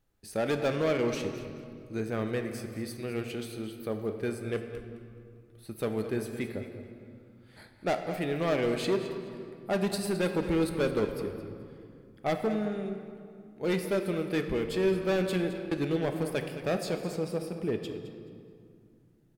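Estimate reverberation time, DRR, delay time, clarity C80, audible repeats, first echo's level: 2.4 s, 5.0 dB, 0.214 s, 7.0 dB, 2, -13.0 dB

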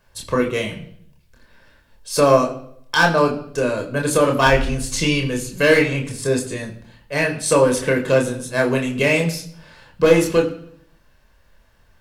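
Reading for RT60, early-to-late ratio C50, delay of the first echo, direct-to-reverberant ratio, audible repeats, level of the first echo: 0.65 s, 12.0 dB, none, 1.5 dB, none, none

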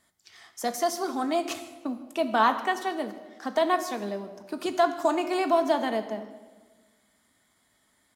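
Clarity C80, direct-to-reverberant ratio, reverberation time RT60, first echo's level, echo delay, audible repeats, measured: 12.5 dB, 7.0 dB, 1.4 s, -20.5 dB, 0.155 s, 1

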